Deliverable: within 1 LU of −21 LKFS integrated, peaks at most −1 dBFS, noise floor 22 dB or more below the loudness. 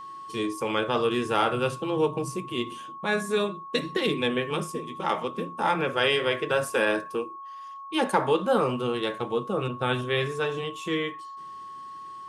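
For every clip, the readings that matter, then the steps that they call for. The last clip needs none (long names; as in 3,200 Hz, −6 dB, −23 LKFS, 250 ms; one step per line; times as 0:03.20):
interfering tone 1,100 Hz; level of the tone −38 dBFS; integrated loudness −27.0 LKFS; sample peak −8.0 dBFS; target loudness −21.0 LKFS
→ notch filter 1,100 Hz, Q 30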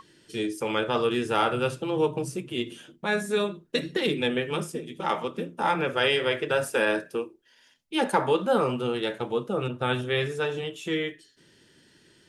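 interfering tone none found; integrated loudness −27.5 LKFS; sample peak −8.5 dBFS; target loudness −21.0 LKFS
→ level +6.5 dB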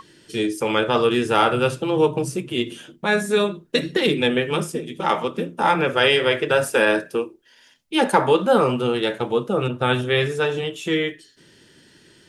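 integrated loudness −21.0 LKFS; sample peak −2.0 dBFS; background noise floor −54 dBFS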